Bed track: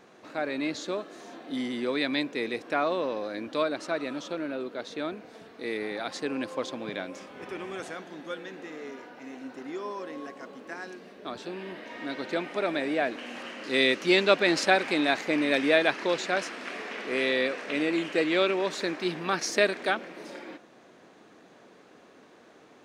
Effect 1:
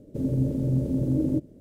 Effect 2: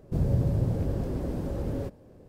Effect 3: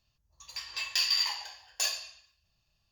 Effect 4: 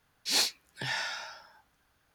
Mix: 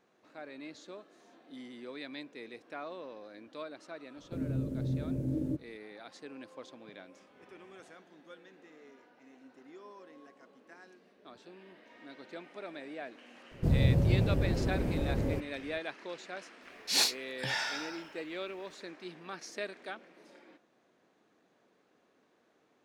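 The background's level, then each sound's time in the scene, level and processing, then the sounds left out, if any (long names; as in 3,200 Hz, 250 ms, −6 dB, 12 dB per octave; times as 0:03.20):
bed track −15.5 dB
0:04.17: mix in 1 −9 dB
0:13.51: mix in 2 −0.5 dB
0:16.62: mix in 4 −0.5 dB
not used: 3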